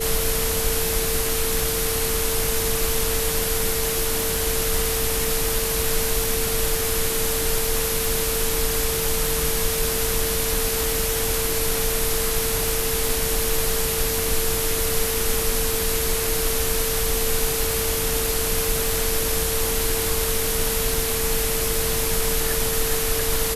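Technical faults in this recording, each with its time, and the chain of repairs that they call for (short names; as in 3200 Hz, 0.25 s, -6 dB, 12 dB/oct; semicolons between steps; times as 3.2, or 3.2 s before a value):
crackle 56/s -26 dBFS
tone 450 Hz -27 dBFS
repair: de-click; notch 450 Hz, Q 30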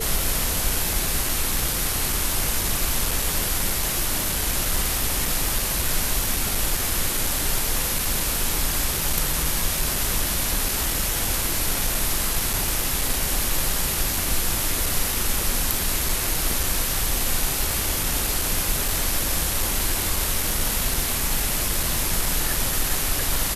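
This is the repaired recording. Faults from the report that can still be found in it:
none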